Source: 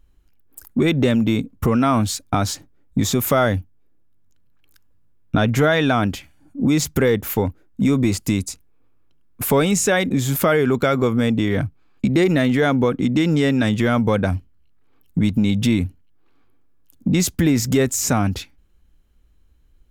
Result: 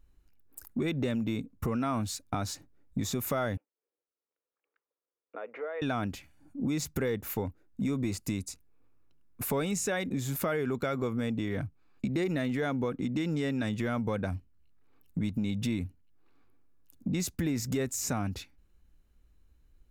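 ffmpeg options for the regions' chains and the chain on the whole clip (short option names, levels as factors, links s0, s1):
-filter_complex "[0:a]asettb=1/sr,asplit=3[s0][s1][s2];[s0]atrim=end=3.574[s3];[s1]atrim=start=3.57:end=5.82,asetpts=PTS-STARTPTS,afade=t=in:d=0.004:c=qsin,afade=t=out:st=2.246:d=0.004:c=qsin,acompressor=threshold=0.0891:ratio=4:attack=3.2:release=140:knee=1:detection=peak,agate=range=0.0224:threshold=0.00316:ratio=3:release=100:detection=peak,highpass=f=460:w=0.5412,highpass=f=460:w=1.3066,equalizer=f=470:t=q:w=4:g=6,equalizer=f=720:t=q:w=4:g=-5,equalizer=f=1000:t=q:w=4:g=-3,equalizer=f=1600:t=q:w=4:g=-8,lowpass=f=2000:w=0.5412,lowpass=f=2000:w=1.3066[s4];[s2]atrim=start=5.816[s5];[s3][s4]acrossfade=d=0.004:c1=hsin:c2=qsin[s6];[s6][s5]acrossfade=d=0.004:c1=qsin:c2=hsin,bandreject=f=3200:w=12,acompressor=threshold=0.0178:ratio=1.5,volume=0.501"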